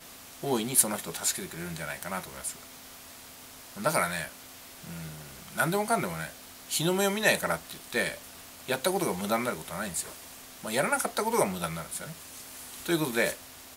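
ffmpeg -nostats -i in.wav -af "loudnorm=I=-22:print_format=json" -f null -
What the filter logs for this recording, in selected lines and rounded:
"input_i" : "-29.6",
"input_tp" : "-6.7",
"input_lra" : "4.2",
"input_thresh" : "-40.7",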